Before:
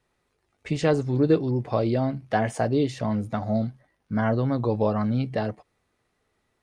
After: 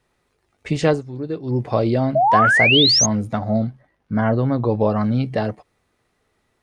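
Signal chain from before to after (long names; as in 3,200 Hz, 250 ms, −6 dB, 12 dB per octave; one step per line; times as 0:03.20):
0:00.89–0:01.55: duck −12 dB, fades 0.13 s
0:02.15–0:03.06: sound drawn into the spectrogram rise 610–6,700 Hz −20 dBFS
0:03.38–0:04.90: high-shelf EQ 4,800 Hz −11 dB
level +5 dB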